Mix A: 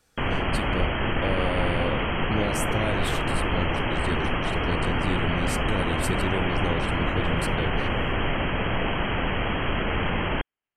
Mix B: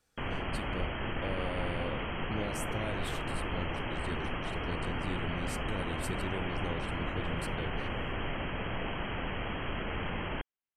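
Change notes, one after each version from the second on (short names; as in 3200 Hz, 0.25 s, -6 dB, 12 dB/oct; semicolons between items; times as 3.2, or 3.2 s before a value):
speech -9.5 dB; background -10.0 dB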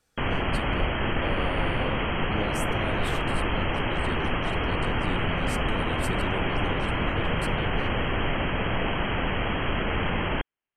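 speech +3.5 dB; background +9.0 dB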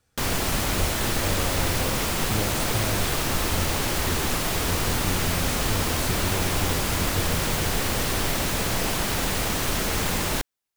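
speech: add bell 97 Hz +9.5 dB 1.1 oct; background: remove brick-wall FIR low-pass 3300 Hz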